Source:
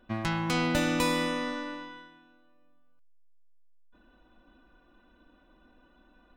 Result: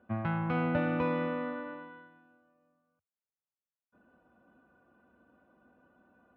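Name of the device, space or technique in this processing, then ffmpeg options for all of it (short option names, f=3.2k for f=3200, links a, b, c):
bass cabinet: -af "highpass=f=87:w=0.5412,highpass=f=87:w=1.3066,equalizer=f=90:t=q:w=4:g=5,equalizer=f=310:t=q:w=4:g=-8,equalizer=f=1k:t=q:w=4:g=-5,equalizer=f=1.9k:t=q:w=4:g=-8,lowpass=f=2k:w=0.5412,lowpass=f=2k:w=1.3066"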